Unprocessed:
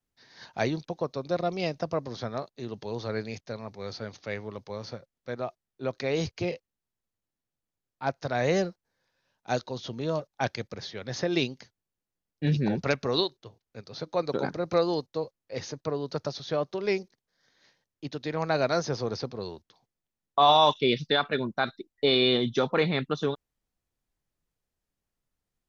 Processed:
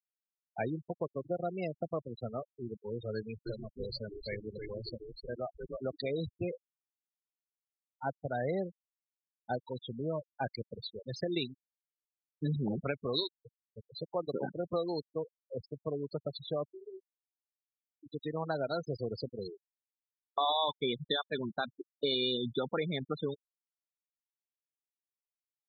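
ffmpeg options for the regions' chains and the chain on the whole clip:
-filter_complex "[0:a]asettb=1/sr,asplit=3[a][b][c];[a]atrim=end=3.154[d];[b]atrim=start=3.15:end=6.11,asetpts=PTS-STARTPTS,afade=t=in:d=0.004:c=qsin,afade=t=out:st=2.956:d=0.004:c=qsin,highshelf=f=4.6k:g=8,asplit=7[e][f][g][h][i][j][k];[f]adelay=308,afreqshift=-89,volume=-4dB[l];[g]adelay=616,afreqshift=-178,volume=-10.9dB[m];[h]adelay=924,afreqshift=-267,volume=-17.9dB[n];[i]adelay=1232,afreqshift=-356,volume=-24.8dB[o];[j]adelay=1540,afreqshift=-445,volume=-31.7dB[p];[k]adelay=1848,afreqshift=-534,volume=-38.7dB[q];[e][l][m][n][o][p][q]amix=inputs=7:normalize=0,atrim=end_sample=130536[r];[c]atrim=start=6.106[s];[d][r]acrossfade=d=0.004:c1=hsin:c2=qsin[t];[t][s]acrossfade=d=0.004:c1=qsin:c2=hsin,asettb=1/sr,asplit=3[u][v][w];[u]atrim=end=16.734[x];[v]atrim=start=16.73:end=18.09,asetpts=PTS-STARTPTS,afade=t=in:d=0.004:c=qsin,afade=t=out:st=1.356:d=0.004:c=qsin,acompressor=threshold=-45dB:ratio=3:attack=3.2:release=140:knee=1:detection=peak,asplit=2[y][z];[z]adelay=21,volume=-8dB[aa];[y][aa]amix=inputs=2:normalize=0,atrim=end_sample=59976[ab];[w]atrim=start=18.086[ac];[x][ab]acrossfade=d=0.004:c1=hsin:c2=qsin[ad];[ad][ac]acrossfade=d=0.004:c1=qsin:c2=hsin,equalizer=f=3.9k:t=o:w=0.42:g=5.5,acompressor=threshold=-27dB:ratio=2.5,afftfilt=real='re*gte(hypot(re,im),0.0562)':imag='im*gte(hypot(re,im),0.0562)':win_size=1024:overlap=0.75,volume=-3.5dB"

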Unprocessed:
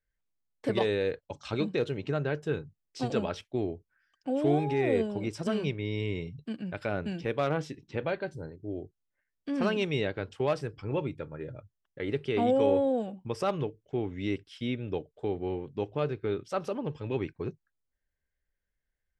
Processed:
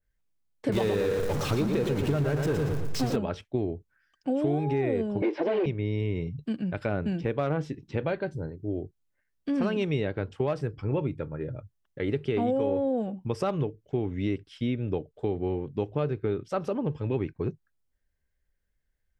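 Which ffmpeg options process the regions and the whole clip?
-filter_complex "[0:a]asettb=1/sr,asplit=3[a][b][c];[a]atrim=end=0.724[d];[b]atrim=start=0.72:end=3.16,asetpts=PTS-STARTPTS,afade=t=in:d=0.004:c=qsin,afade=t=out:st=2.436:d=0.004:c=qsin,aeval=exprs='val(0)+0.5*0.0335*sgn(val(0))':c=same,equalizer=f=6.7k:w=0.89:g=2.5,aecho=1:1:116|232|348|464|580:0.531|0.223|0.0936|0.0393|0.0165,atrim=end_sample=107604[e];[c]atrim=start=3.156[f];[d][e]acrossfade=d=0.004:c1=hsin:c2=qsin[g];[g][f]acrossfade=d=0.004:c1=qsin:c2=hsin,asettb=1/sr,asplit=3[h][i][j];[h]atrim=end=5.224[k];[i]atrim=start=5.22:end=5.66,asetpts=PTS-STARTPTS,afade=t=in:d=0.004:c=qsin,afade=t=out:st=0.436:d=0.004:c=qsin,asplit=2[l][m];[m]highpass=f=720:p=1,volume=26dB,asoftclip=type=tanh:threshold=-19.5dB[n];[l][n]amix=inputs=2:normalize=0,lowpass=f=1.4k:p=1,volume=-6dB,highpass=f=290:w=0.5412,highpass=f=290:w=1.3066,equalizer=f=330:t=q:w=4:g=6,equalizer=f=510:t=q:w=4:g=4,equalizer=f=770:t=q:w=4:g=4,equalizer=f=1.3k:t=q:w=4:g=-10,equalizer=f=2.1k:t=q:w=4:g=4,lowpass=f=4.3k:w=0.5412,lowpass=f=4.3k:w=1.3066[o];[j]atrim=start=5.656[p];[k][o]acrossfade=d=0.004:c1=hsin:c2=qsin[q];[q][p]acrossfade=d=0.004:c1=qsin:c2=hsin,lowshelf=f=340:g=6,acompressor=threshold=-25dB:ratio=6,adynamicequalizer=threshold=0.00224:dfrequency=2500:dqfactor=0.7:tfrequency=2500:tqfactor=0.7:attack=5:release=100:ratio=0.375:range=3.5:mode=cutabove:tftype=highshelf,volume=2dB"

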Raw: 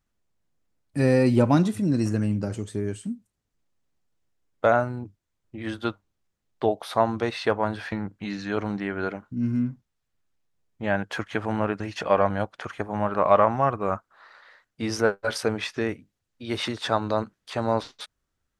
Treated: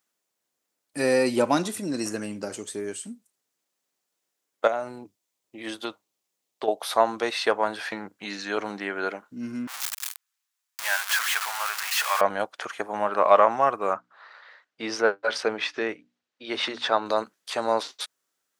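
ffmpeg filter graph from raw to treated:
-filter_complex "[0:a]asettb=1/sr,asplit=3[a][b][c];[a]atrim=end=4.674[d];[b]atrim=start=4.67:end=6.68,asetpts=PTS-STARTPTS,afade=t=in:d=0.004:c=qsin,afade=t=out:st=2.006:d=0.004:c=qsin,equalizer=f=1.5k:w=2.6:g=-6.5,acompressor=threshold=-24dB:ratio=4:attack=3.2:release=140:knee=1:detection=peak[e];[c]atrim=start=6.676[f];[d][e]acrossfade=d=0.004:c1=hsin:c2=qsin[g];[g][f]acrossfade=d=0.004:c1=qsin:c2=hsin,asettb=1/sr,asplit=3[h][i][j];[h]atrim=end=9.674[k];[i]atrim=start=9.67:end=12.21,asetpts=PTS-STARTPTS,afade=t=in:d=0.004:c=qsin,afade=t=out:st=2.536:d=0.004:c=qsin,aeval=exprs='val(0)+0.5*0.0631*sgn(val(0))':c=same,highpass=f=980:w=0.5412,highpass=f=980:w=1.3066,adynamicequalizer=threshold=0.00794:dfrequency=2700:dqfactor=0.7:tfrequency=2700:tqfactor=0.7:attack=5:release=100:ratio=0.375:range=2:mode=cutabove:tftype=highshelf[l];[j]atrim=start=12.206[m];[k][l]acrossfade=d=0.004:c1=hsin:c2=qsin[n];[n][m]acrossfade=d=0.004:c1=qsin:c2=hsin,asettb=1/sr,asplit=3[o][p][q];[o]atrim=end=13.934[r];[p]atrim=start=13.93:end=17.06,asetpts=PTS-STARTPTS,afade=t=in:d=0.004:c=qsin,afade=t=out:st=3.126:d=0.004:c=qsin,lowpass=3.8k,bandreject=f=60:t=h:w=6,bandreject=f=120:t=h:w=6,bandreject=f=180:t=h:w=6,bandreject=f=240:t=h:w=6,bandreject=f=300:t=h:w=6[s];[q]atrim=start=17.056[t];[r][s]acrossfade=d=0.004:c1=hsin:c2=qsin[u];[u][t]acrossfade=d=0.004:c1=qsin:c2=hsin,highpass=380,highshelf=f=4.4k:g=9.5,volume=1.5dB"

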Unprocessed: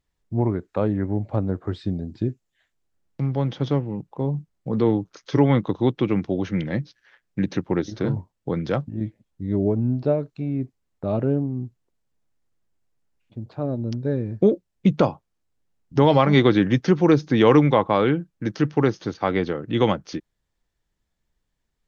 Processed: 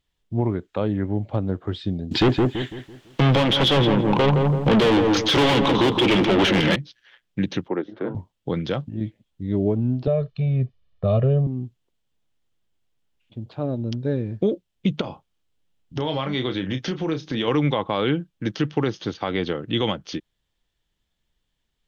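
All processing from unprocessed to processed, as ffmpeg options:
-filter_complex "[0:a]asettb=1/sr,asplit=3[a][b][c];[a]atrim=end=2.114[d];[b]atrim=start=2.11:end=6.76,asetpts=PTS-STARTPTS,afade=t=in:d=0.004:c=qsin,afade=t=out:st=4.646:d=0.004:c=qsin,asplit=2[e][f];[f]highpass=f=720:p=1,volume=36dB,asoftclip=type=tanh:threshold=-6dB[g];[e][g]amix=inputs=2:normalize=0,lowpass=f=4.5k:p=1,volume=-6dB,asplit=2[h][i];[i]adelay=167,lowpass=f=1.2k:p=1,volume=-4dB,asplit=2[j][k];[k]adelay=167,lowpass=f=1.2k:p=1,volume=0.41,asplit=2[l][m];[m]adelay=167,lowpass=f=1.2k:p=1,volume=0.41,asplit=2[n][o];[o]adelay=167,lowpass=f=1.2k:p=1,volume=0.41,asplit=2[p][q];[q]adelay=167,lowpass=f=1.2k:p=1,volume=0.41[r];[h][j][l][n][p][r]amix=inputs=6:normalize=0,atrim=end_sample=205065[s];[c]atrim=start=6.756[t];[d][s]acrossfade=d=0.004:c1=hsin:c2=qsin[u];[u][t]acrossfade=d=0.004:c1=qsin:c2=hsin,asettb=1/sr,asplit=3[v][w][x];[v]atrim=end=7.684[y];[w]atrim=start=7.68:end=8.15,asetpts=PTS-STARTPTS,afade=t=in:d=0.004:c=qsin,afade=t=out:st=0.466:d=0.004:c=qsin,highpass=140,lowpass=3.9k,acrossover=split=260 2000:gain=0.224 1 0.0708[z][aa][ab];[z][aa][ab]amix=inputs=3:normalize=0[ac];[x]atrim=start=8.146[ad];[y][ac]acrossfade=d=0.004:c1=hsin:c2=qsin[ae];[ae][ad]acrossfade=d=0.004:c1=qsin:c2=hsin,asettb=1/sr,asplit=3[af][ag][ah];[af]atrim=end=10.074[ai];[ag]atrim=start=10.07:end=11.47,asetpts=PTS-STARTPTS,afade=t=in:d=0.004:c=qsin,afade=t=out:st=1.396:d=0.004:c=qsin,lowpass=f=4.9k:w=0.5412,lowpass=f=4.9k:w=1.3066,lowshelf=f=190:g=8,aecho=1:1:1.7:0.97,atrim=end_sample=61740[aj];[ah]atrim=start=11.466[ak];[ai][aj]acrossfade=d=0.004:c1=hsin:c2=qsin[al];[al][ak]acrossfade=d=0.004:c1=qsin:c2=hsin,asettb=1/sr,asplit=3[am][an][ao];[am]atrim=end=15.014[ap];[an]atrim=start=15.01:end=17.48,asetpts=PTS-STARTPTS,afade=t=in:d=0.004:c=qsin,afade=t=out:st=2.466:d=0.004:c=qsin,acompressor=threshold=-25dB:ratio=3:attack=3.2:release=140:knee=1:detection=peak,asplit=2[aq][ar];[ar]adelay=31,volume=-8.5dB[as];[aq][as]amix=inputs=2:normalize=0,atrim=end_sample=108927[at];[ao]atrim=start=17.476[au];[ap][at]acrossfade=d=0.004:c1=hsin:c2=qsin[av];[av][au]acrossfade=d=0.004:c1=qsin:c2=hsin,equalizer=f=3.2k:t=o:w=0.64:g=10.5,alimiter=limit=-11.5dB:level=0:latency=1:release=99"

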